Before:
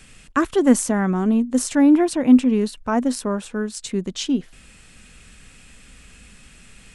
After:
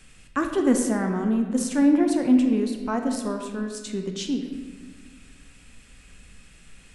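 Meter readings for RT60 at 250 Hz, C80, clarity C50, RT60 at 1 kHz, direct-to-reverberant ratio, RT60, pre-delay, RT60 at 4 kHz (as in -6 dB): 2.0 s, 7.0 dB, 5.5 dB, 1.3 s, 4.0 dB, 1.5 s, 18 ms, 1.0 s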